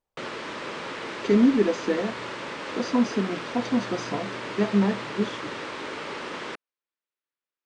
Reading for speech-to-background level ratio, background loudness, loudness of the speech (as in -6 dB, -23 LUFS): 8.5 dB, -34.0 LUFS, -25.5 LUFS